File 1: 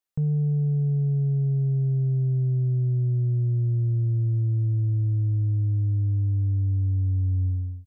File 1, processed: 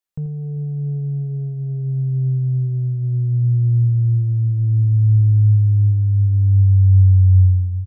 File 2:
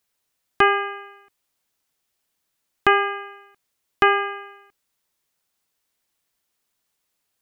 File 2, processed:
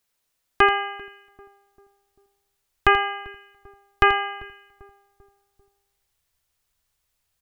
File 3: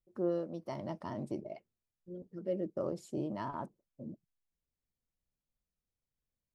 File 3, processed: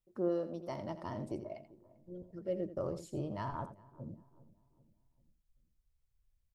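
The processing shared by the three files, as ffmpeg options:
-filter_complex "[0:a]asplit=2[a][b];[b]aecho=0:1:84:0.251[c];[a][c]amix=inputs=2:normalize=0,asubboost=boost=10.5:cutoff=77,asplit=2[d][e];[e]adelay=393,lowpass=f=840:p=1,volume=-19.5dB,asplit=2[f][g];[g]adelay=393,lowpass=f=840:p=1,volume=0.52,asplit=2[h][i];[i]adelay=393,lowpass=f=840:p=1,volume=0.52,asplit=2[j][k];[k]adelay=393,lowpass=f=840:p=1,volume=0.52[l];[f][h][j][l]amix=inputs=4:normalize=0[m];[d][m]amix=inputs=2:normalize=0"

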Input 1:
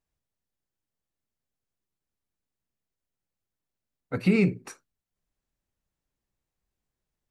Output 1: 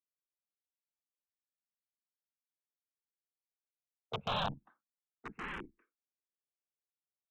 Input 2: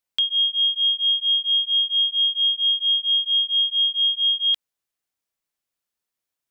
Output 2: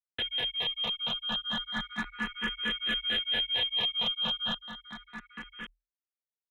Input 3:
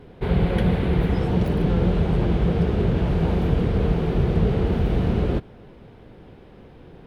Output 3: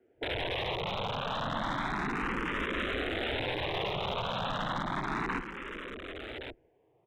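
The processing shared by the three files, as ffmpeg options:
-filter_complex "[0:a]afwtdn=0.0355,highpass=110,acrossover=split=240 2400:gain=0.112 1 0.112[a][b][c];[a][b][c]amix=inputs=3:normalize=0,aresample=8000,aeval=exprs='(mod(18.8*val(0)+1,2)-1)/18.8':c=same,aresample=44100,afreqshift=-41,aeval=exprs='clip(val(0),-1,0.0668)':c=same,aecho=1:1:1120:0.398,asplit=2[d][e];[e]afreqshift=0.32[f];[d][f]amix=inputs=2:normalize=1"

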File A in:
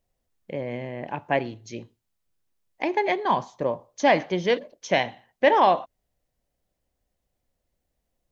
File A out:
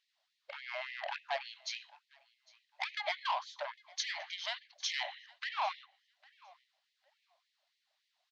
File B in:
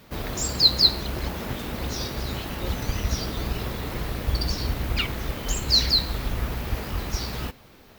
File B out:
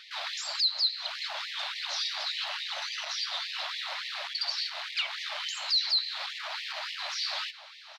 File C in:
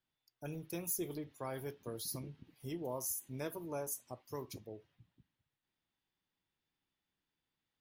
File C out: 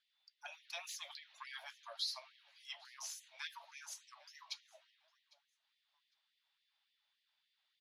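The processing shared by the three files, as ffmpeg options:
-af "lowshelf=f=71:g=-11.5,bandreject=f=60:t=h:w=6,bandreject=f=120:t=h:w=6,bandreject=f=180:t=h:w=6,bandreject=f=240:t=h:w=6,acompressor=threshold=-30dB:ratio=10,asoftclip=type=tanh:threshold=-32dB,lowpass=f=4.1k:t=q:w=2.4,aecho=1:1:804|1608:0.0631|0.012,afftfilt=real='re*gte(b*sr/1024,550*pow(1800/550,0.5+0.5*sin(2*PI*3.5*pts/sr)))':imag='im*gte(b*sr/1024,550*pow(1800/550,0.5+0.5*sin(2*PI*3.5*pts/sr)))':win_size=1024:overlap=0.75,volume=4.5dB"

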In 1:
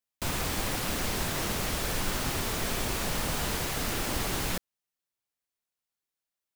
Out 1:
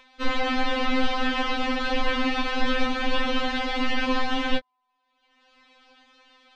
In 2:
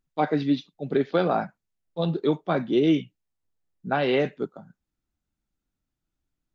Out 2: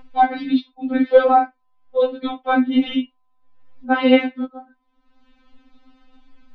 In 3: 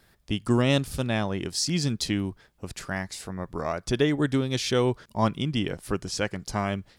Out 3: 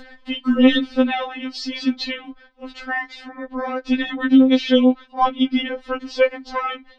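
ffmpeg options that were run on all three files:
-af "lowpass=f=3.7k:w=0.5412,lowpass=f=3.7k:w=1.3066,apsyclip=13dB,acompressor=mode=upward:threshold=-26dB:ratio=2.5,aeval=exprs='val(0)+0.0224*sin(2*PI*930*n/s)':c=same,afftfilt=real='re*3.46*eq(mod(b,12),0)':imag='im*3.46*eq(mod(b,12),0)':win_size=2048:overlap=0.75,volume=-3dB"

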